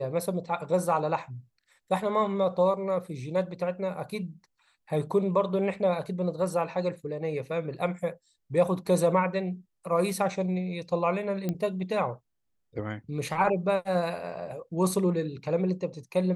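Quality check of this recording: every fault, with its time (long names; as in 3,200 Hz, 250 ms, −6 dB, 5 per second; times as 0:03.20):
0:11.49: click −17 dBFS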